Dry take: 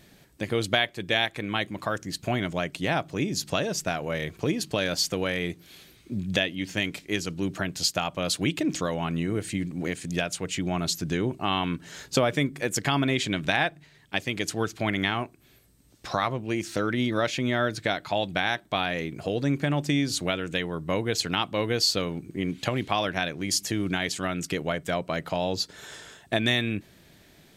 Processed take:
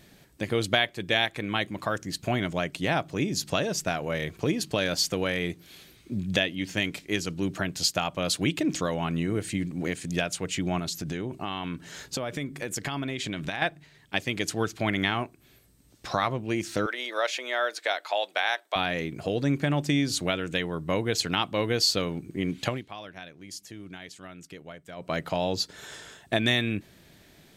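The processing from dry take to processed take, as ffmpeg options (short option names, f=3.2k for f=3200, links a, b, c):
-filter_complex "[0:a]asettb=1/sr,asplit=3[a][b][c];[a]atrim=end=10.794[d];[b]atrim=start=10.79:end=13.62,asetpts=PTS-STARTPTS,afade=t=in:d=0.004:c=qsin,afade=t=out:st=2.826:d=0.004:c=qsin,acompressor=threshold=-28dB:ratio=5:attack=3.2:release=140:knee=1:detection=peak[e];[c]atrim=start=13.616[f];[d][e]acrossfade=d=0.004:c1=hsin:c2=qsin[g];[g][f]acrossfade=d=0.004:c1=qsin:c2=hsin,asettb=1/sr,asplit=3[h][i][j];[h]atrim=end=16.864[k];[i]atrim=start=16.86:end=18.76,asetpts=PTS-STARTPTS,afade=t=in:d=0.004:c=qsin,afade=t=out:st=1.896:d=0.004:c=qsin,highpass=f=490:w=0.5412,highpass=f=490:w=1.3066[l];[j]atrim=start=18.756[m];[k][l]acrossfade=d=0.004:c1=hsin:c2=qsin[n];[n][m]acrossfade=d=0.004:c1=qsin:c2=hsin,asplit=3[o][p][q];[o]atrim=end=22.83,asetpts=PTS-STARTPTS,afade=t=out:st=22.67:d=0.16:silence=0.177828[r];[p]atrim=start=22.83:end=24.96,asetpts=PTS-STARTPTS,volume=-15dB[s];[q]atrim=start=24.96,asetpts=PTS-STARTPTS,afade=t=in:d=0.16:silence=0.177828[t];[r][s][t]concat=n=3:v=0:a=1"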